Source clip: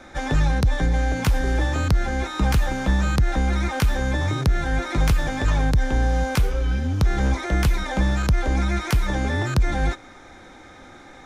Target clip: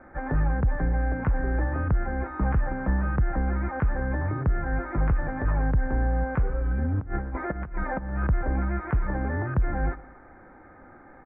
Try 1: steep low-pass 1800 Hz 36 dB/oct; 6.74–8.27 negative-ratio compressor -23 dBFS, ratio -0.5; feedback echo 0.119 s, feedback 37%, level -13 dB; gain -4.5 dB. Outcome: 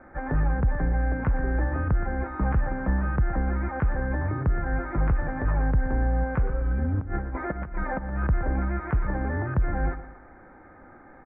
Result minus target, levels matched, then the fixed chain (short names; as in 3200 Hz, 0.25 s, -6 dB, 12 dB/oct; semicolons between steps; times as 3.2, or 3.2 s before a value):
echo-to-direct +6.5 dB
steep low-pass 1800 Hz 36 dB/oct; 6.74–8.27 negative-ratio compressor -23 dBFS, ratio -0.5; feedback echo 0.119 s, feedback 37%, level -19.5 dB; gain -4.5 dB